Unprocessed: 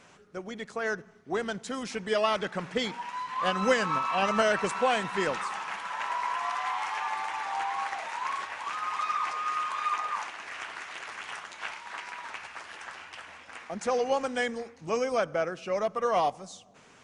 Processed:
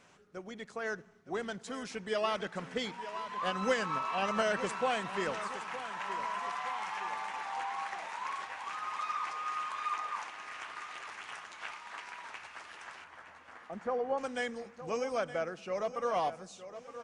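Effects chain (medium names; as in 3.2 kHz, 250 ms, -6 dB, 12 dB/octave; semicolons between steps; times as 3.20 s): 13.04–14.18 s: Savitzky-Golay filter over 41 samples; feedback delay 916 ms, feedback 47%, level -13 dB; trim -6 dB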